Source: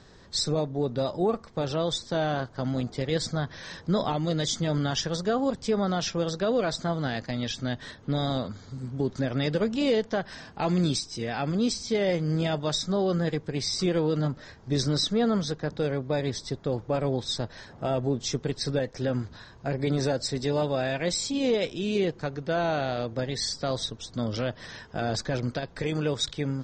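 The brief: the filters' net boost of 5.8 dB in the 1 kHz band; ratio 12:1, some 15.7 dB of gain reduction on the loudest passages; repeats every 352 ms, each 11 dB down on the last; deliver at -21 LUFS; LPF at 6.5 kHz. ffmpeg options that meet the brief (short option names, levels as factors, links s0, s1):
-af "lowpass=6500,equalizer=f=1000:t=o:g=8.5,acompressor=threshold=0.0178:ratio=12,aecho=1:1:352|704|1056:0.282|0.0789|0.0221,volume=8.41"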